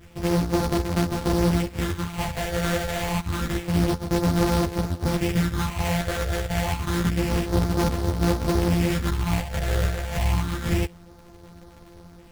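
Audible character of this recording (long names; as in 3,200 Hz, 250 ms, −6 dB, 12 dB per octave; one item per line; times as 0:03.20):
a buzz of ramps at a fixed pitch in blocks of 256 samples
phaser sweep stages 6, 0.28 Hz, lowest notch 260–3,900 Hz
aliases and images of a low sample rate 5,200 Hz, jitter 20%
a shimmering, thickened sound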